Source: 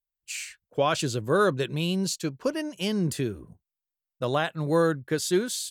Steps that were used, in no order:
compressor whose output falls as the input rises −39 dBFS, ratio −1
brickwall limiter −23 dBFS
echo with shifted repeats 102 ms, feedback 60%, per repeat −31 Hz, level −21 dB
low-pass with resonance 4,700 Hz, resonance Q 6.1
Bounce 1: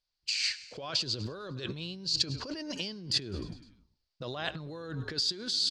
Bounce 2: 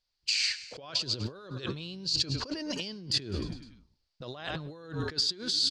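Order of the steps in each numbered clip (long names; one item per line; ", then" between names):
brickwall limiter, then echo with shifted repeats, then compressor whose output falls as the input rises, then low-pass with resonance
echo with shifted repeats, then compressor whose output falls as the input rises, then brickwall limiter, then low-pass with resonance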